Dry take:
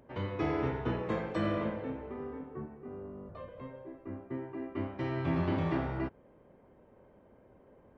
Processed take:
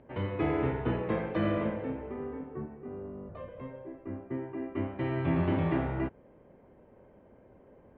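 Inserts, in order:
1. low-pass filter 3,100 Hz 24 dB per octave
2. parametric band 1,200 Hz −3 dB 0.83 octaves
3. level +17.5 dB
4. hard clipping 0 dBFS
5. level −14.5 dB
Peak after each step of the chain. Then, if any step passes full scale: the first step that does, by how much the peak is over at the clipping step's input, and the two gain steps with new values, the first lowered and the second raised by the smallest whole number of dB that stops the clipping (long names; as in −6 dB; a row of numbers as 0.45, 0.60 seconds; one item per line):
−20.5, −20.5, −3.0, −3.0, −17.5 dBFS
no step passes full scale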